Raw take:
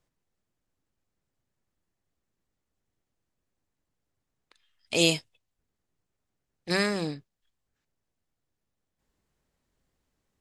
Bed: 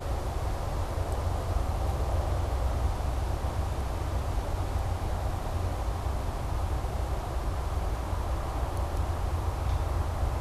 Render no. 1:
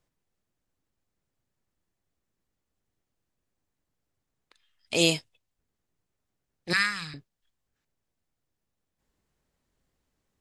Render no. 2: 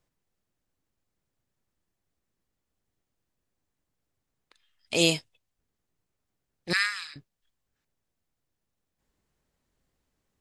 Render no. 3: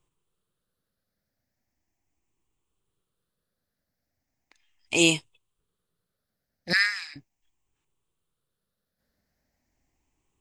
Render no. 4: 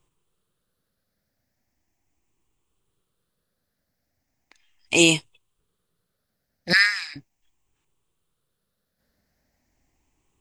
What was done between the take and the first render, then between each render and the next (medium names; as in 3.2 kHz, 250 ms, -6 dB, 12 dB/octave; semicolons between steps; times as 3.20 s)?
6.73–7.14 s: FFT filter 120 Hz 0 dB, 350 Hz -27 dB, 600 Hz -26 dB, 1.3 kHz +7 dB, 6.6 kHz 0 dB
6.73–7.16 s: high-pass 1.3 kHz
drifting ripple filter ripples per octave 0.67, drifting +0.38 Hz, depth 10 dB
trim +5 dB; peak limiter -3 dBFS, peak gain reduction 2.5 dB